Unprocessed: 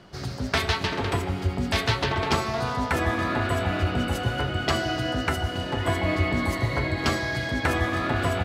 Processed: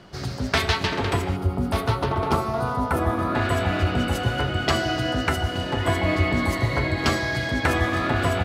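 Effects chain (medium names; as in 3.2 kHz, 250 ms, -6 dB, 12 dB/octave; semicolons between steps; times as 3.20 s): time-frequency box 1.36–3.35 s, 1.5–8.7 kHz -10 dB; trim +2.5 dB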